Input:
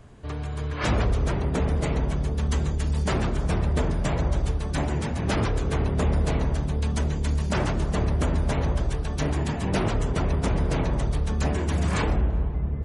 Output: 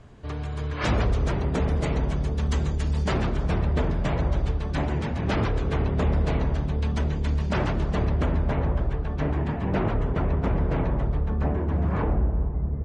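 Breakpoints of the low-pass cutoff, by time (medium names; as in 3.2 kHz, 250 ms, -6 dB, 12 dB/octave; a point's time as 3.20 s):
2.80 s 6.7 kHz
3.65 s 4 kHz
8.04 s 4 kHz
8.62 s 2 kHz
10.86 s 2 kHz
11.61 s 1.2 kHz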